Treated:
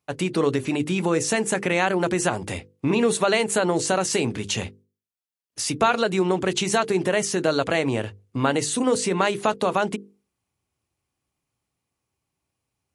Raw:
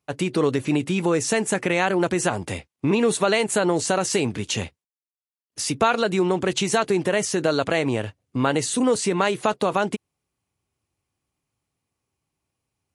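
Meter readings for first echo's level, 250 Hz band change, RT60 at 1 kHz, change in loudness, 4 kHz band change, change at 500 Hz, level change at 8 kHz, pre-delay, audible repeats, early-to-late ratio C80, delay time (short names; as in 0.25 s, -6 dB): none, -1.0 dB, none, -0.5 dB, 0.0 dB, -0.5 dB, 0.0 dB, none, none, none, none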